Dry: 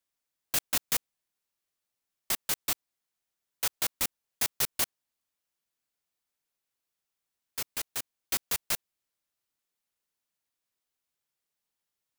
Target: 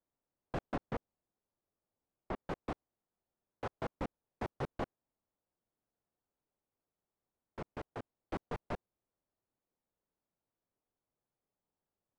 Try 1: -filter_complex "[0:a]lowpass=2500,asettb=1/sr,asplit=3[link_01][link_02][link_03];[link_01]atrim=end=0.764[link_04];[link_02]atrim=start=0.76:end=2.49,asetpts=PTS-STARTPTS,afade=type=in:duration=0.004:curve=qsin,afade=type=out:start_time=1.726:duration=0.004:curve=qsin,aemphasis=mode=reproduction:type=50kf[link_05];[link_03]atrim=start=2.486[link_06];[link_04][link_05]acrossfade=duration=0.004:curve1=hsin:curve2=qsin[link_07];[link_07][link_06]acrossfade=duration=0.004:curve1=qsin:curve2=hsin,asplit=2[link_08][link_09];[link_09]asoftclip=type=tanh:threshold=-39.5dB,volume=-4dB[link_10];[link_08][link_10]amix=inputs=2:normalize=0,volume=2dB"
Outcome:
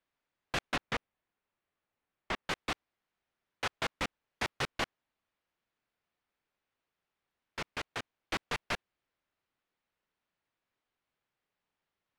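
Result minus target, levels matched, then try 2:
2,000 Hz band +7.5 dB
-filter_complex "[0:a]lowpass=740,asettb=1/sr,asplit=3[link_01][link_02][link_03];[link_01]atrim=end=0.764[link_04];[link_02]atrim=start=0.76:end=2.49,asetpts=PTS-STARTPTS,afade=type=in:duration=0.004:curve=qsin,afade=type=out:start_time=1.726:duration=0.004:curve=qsin,aemphasis=mode=reproduction:type=50kf[link_05];[link_03]atrim=start=2.486[link_06];[link_04][link_05]acrossfade=duration=0.004:curve1=hsin:curve2=qsin[link_07];[link_07][link_06]acrossfade=duration=0.004:curve1=qsin:curve2=hsin,asplit=2[link_08][link_09];[link_09]asoftclip=type=tanh:threshold=-39.5dB,volume=-4dB[link_10];[link_08][link_10]amix=inputs=2:normalize=0,volume=2dB"

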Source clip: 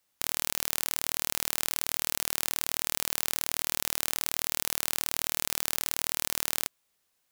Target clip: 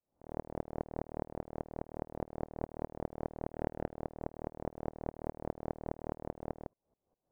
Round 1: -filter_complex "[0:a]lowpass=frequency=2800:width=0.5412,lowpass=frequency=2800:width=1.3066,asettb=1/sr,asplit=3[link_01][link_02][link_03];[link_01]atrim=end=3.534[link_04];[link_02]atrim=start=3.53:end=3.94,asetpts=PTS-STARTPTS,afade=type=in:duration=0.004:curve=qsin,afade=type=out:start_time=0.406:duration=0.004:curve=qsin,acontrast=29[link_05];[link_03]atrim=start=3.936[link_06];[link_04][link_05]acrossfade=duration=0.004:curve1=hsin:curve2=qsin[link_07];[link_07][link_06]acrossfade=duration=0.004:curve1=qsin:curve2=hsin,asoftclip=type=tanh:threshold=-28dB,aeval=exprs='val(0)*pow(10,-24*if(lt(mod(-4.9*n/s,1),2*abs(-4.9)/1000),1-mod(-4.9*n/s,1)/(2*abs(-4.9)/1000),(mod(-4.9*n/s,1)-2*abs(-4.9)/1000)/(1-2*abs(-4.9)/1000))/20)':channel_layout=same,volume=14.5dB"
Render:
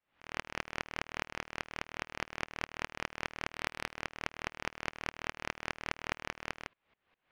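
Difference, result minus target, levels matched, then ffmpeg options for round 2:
2,000 Hz band +19.0 dB
-filter_complex "[0:a]lowpass=frequency=730:width=0.5412,lowpass=frequency=730:width=1.3066,asettb=1/sr,asplit=3[link_01][link_02][link_03];[link_01]atrim=end=3.534[link_04];[link_02]atrim=start=3.53:end=3.94,asetpts=PTS-STARTPTS,afade=type=in:duration=0.004:curve=qsin,afade=type=out:start_time=0.406:duration=0.004:curve=qsin,acontrast=29[link_05];[link_03]atrim=start=3.936[link_06];[link_04][link_05]acrossfade=duration=0.004:curve1=hsin:curve2=qsin[link_07];[link_07][link_06]acrossfade=duration=0.004:curve1=qsin:curve2=hsin,asoftclip=type=tanh:threshold=-28dB,aeval=exprs='val(0)*pow(10,-24*if(lt(mod(-4.9*n/s,1),2*abs(-4.9)/1000),1-mod(-4.9*n/s,1)/(2*abs(-4.9)/1000),(mod(-4.9*n/s,1)-2*abs(-4.9)/1000)/(1-2*abs(-4.9)/1000))/20)':channel_layout=same,volume=14.5dB"

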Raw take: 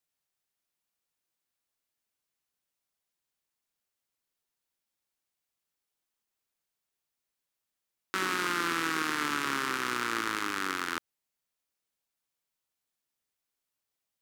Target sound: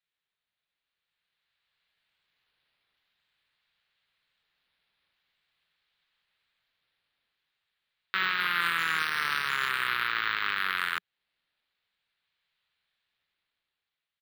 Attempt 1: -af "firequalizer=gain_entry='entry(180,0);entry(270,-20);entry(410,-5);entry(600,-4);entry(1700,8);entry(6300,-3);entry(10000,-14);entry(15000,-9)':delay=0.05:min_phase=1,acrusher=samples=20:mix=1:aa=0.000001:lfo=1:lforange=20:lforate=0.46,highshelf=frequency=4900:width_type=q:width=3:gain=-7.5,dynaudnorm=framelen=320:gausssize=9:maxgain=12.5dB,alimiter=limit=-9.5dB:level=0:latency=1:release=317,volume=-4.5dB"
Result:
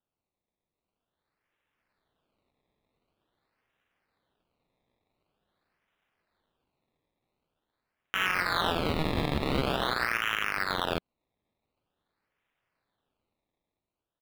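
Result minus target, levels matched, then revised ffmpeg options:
sample-and-hold swept by an LFO: distortion +29 dB
-af "firequalizer=gain_entry='entry(180,0);entry(270,-20);entry(410,-5);entry(600,-4);entry(1700,8);entry(6300,-3);entry(10000,-14);entry(15000,-9)':delay=0.05:min_phase=1,acrusher=samples=4:mix=1:aa=0.000001:lfo=1:lforange=4:lforate=0.46,highshelf=frequency=4900:width_type=q:width=3:gain=-7.5,dynaudnorm=framelen=320:gausssize=9:maxgain=12.5dB,alimiter=limit=-9.5dB:level=0:latency=1:release=317,volume=-4.5dB"

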